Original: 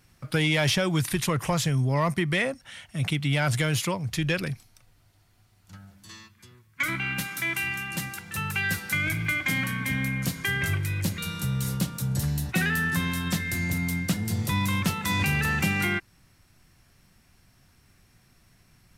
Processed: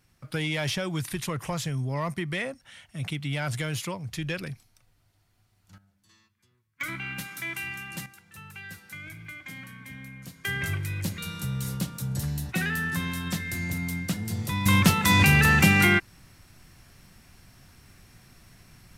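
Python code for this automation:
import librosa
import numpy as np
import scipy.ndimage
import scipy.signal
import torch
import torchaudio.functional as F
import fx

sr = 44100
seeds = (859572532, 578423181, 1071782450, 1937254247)

y = fx.gain(x, sr, db=fx.steps((0.0, -5.5), (5.78, -16.0), (6.81, -5.5), (8.06, -15.0), (10.45, -3.0), (14.66, 6.5)))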